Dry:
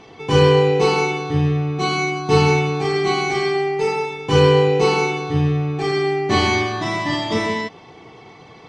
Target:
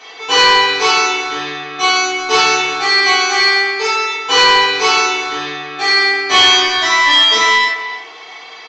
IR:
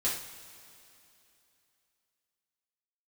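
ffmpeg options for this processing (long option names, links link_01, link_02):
-filter_complex "[0:a]highpass=1100,asplit=2[link_01][link_02];[link_02]adelay=300,highpass=300,lowpass=3400,asoftclip=type=hard:threshold=-19.5dB,volume=-12dB[link_03];[link_01][link_03]amix=inputs=2:normalize=0[link_04];[1:a]atrim=start_sample=2205,atrim=end_sample=3528[link_05];[link_04][link_05]afir=irnorm=-1:irlink=0,aeval=exprs='0.562*sin(PI/2*1.58*val(0)/0.562)':channel_layout=same,aresample=16000,aresample=44100,volume=1.5dB"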